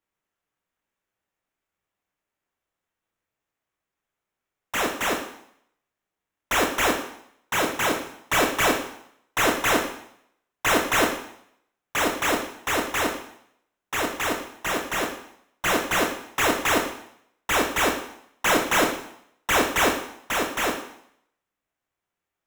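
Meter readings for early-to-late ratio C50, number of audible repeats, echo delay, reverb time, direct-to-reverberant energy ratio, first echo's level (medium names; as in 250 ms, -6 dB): 6.0 dB, no echo, no echo, 0.70 s, 1.5 dB, no echo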